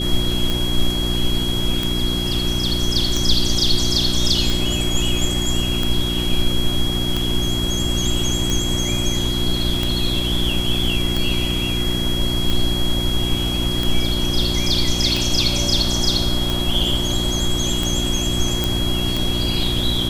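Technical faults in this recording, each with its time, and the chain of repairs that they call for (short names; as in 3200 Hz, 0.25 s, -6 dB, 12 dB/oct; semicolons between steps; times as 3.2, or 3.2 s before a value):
hum 60 Hz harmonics 6 -24 dBFS
tick 45 rpm
tone 3300 Hz -24 dBFS
18.64 pop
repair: de-click; de-hum 60 Hz, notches 6; notch 3300 Hz, Q 30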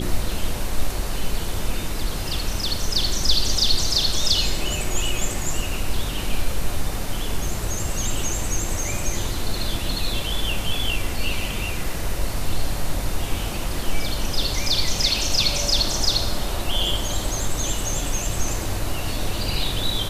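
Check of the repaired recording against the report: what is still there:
none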